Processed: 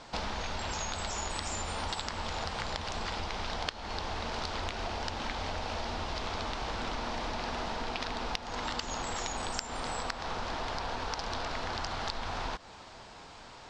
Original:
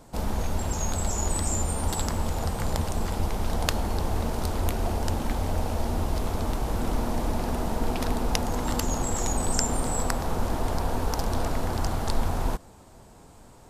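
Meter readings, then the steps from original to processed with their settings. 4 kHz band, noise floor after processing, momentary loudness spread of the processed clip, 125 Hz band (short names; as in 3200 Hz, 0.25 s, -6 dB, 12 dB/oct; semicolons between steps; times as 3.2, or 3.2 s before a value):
+1.0 dB, -50 dBFS, 2 LU, -13.5 dB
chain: LPF 5000 Hz 24 dB/oct; tilt shelf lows -9.5 dB, about 750 Hz; compressor 12:1, threshold -35 dBFS, peak gain reduction 21 dB; gain +3.5 dB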